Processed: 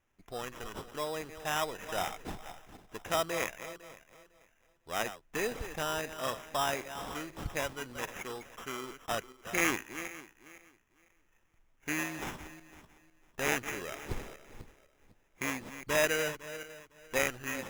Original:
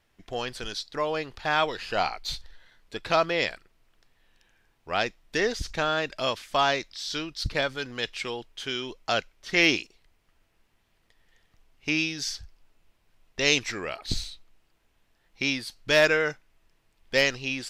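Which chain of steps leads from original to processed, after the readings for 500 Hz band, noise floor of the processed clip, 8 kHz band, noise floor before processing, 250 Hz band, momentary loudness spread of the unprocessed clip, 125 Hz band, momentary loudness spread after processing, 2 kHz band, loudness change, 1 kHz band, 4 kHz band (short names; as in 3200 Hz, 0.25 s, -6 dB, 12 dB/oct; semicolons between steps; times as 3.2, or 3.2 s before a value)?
-7.5 dB, -70 dBFS, -1.5 dB, -69 dBFS, -7.0 dB, 12 LU, -6.5 dB, 18 LU, -8.0 dB, -8.0 dB, -6.5 dB, -12.0 dB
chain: regenerating reverse delay 0.252 s, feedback 45%, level -11.5 dB; sample-rate reducer 4400 Hz, jitter 0%; gain -8 dB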